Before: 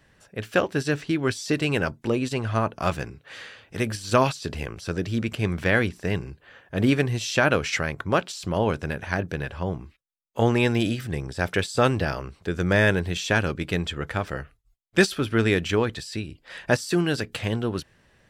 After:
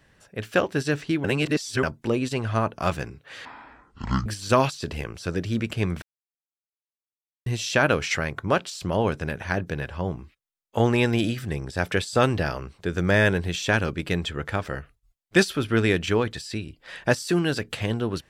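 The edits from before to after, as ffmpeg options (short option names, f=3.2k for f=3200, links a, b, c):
-filter_complex "[0:a]asplit=7[a][b][c][d][e][f][g];[a]atrim=end=1.242[h];[b]atrim=start=1.238:end=1.832,asetpts=PTS-STARTPTS,areverse[i];[c]atrim=start=1.828:end=3.454[j];[d]atrim=start=3.45:end=3.88,asetpts=PTS-STARTPTS,asetrate=23373,aresample=44100,atrim=end_sample=35779,asetpts=PTS-STARTPTS[k];[e]atrim=start=3.876:end=5.64,asetpts=PTS-STARTPTS,afade=t=out:st=1.76:d=0.004:c=hsin[l];[f]atrim=start=5.64:end=7.08,asetpts=PTS-STARTPTS,volume=0[m];[g]atrim=start=7.08,asetpts=PTS-STARTPTS,afade=t=in:d=0.004:c=hsin[n];[h][i]acrossfade=d=0.004:c1=hsin:c2=hsin[o];[o][j]acrossfade=d=0.004:c1=hsin:c2=hsin[p];[p][k]acrossfade=d=0.004:c1=hsin:c2=hsin[q];[l][m][n]concat=n=3:v=0:a=1[r];[q][r]acrossfade=d=0.004:c1=hsin:c2=hsin"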